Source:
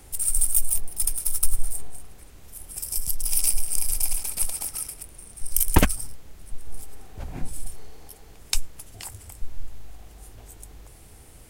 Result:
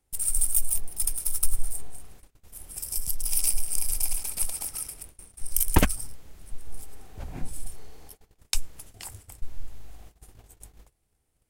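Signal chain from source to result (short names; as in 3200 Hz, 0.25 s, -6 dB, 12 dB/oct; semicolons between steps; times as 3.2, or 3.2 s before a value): gate -42 dBFS, range -24 dB; gain -2.5 dB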